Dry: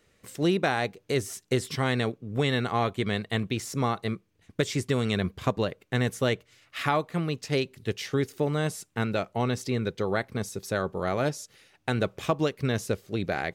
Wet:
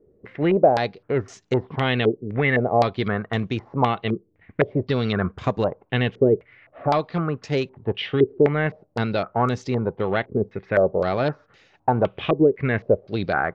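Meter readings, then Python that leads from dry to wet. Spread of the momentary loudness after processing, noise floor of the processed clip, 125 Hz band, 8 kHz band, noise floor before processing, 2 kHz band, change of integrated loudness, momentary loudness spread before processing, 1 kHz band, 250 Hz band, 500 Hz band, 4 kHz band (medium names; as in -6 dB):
7 LU, -63 dBFS, +4.0 dB, under -10 dB, -67 dBFS, +4.5 dB, +6.0 dB, 6 LU, +7.0 dB, +5.0 dB, +8.0 dB, +1.0 dB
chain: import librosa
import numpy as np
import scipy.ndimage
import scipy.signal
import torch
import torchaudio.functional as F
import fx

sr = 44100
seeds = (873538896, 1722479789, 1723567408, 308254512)

p1 = fx.peak_eq(x, sr, hz=750.0, db=3.0, octaves=0.77)
p2 = np.clip(p1, -10.0 ** (-21.0 / 20.0), 10.0 ** (-21.0 / 20.0))
p3 = p1 + (p2 * 10.0 ** (-4.0 / 20.0))
p4 = fx.air_absorb(p3, sr, metres=260.0)
y = fx.filter_held_lowpass(p4, sr, hz=3.9, low_hz=400.0, high_hz=7000.0)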